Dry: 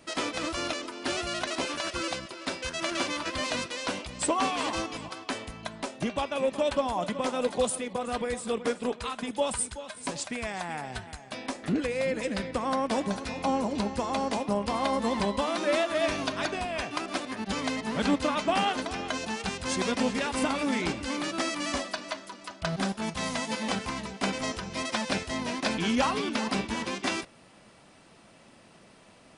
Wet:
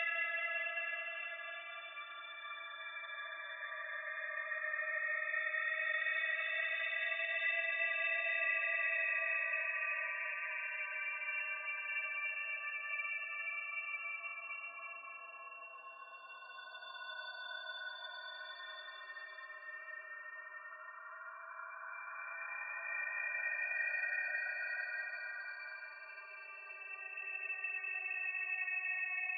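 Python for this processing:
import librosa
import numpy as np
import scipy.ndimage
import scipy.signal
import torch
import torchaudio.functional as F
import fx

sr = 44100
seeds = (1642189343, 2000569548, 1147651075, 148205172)

y = scipy.signal.sosfilt(scipy.signal.butter(4, 380.0, 'highpass', fs=sr, output='sos'), x)
y = fx.high_shelf(y, sr, hz=7100.0, db=-9.5)
y = fx.spec_topn(y, sr, count=16)
y = fx.filter_lfo_highpass(y, sr, shape='square', hz=0.38, low_hz=990.0, high_hz=2100.0, q=3.9)
y = fx.paulstretch(y, sr, seeds[0], factor=39.0, window_s=0.1, from_s=15.83)
y = y * 10.0 ** (-5.0 / 20.0)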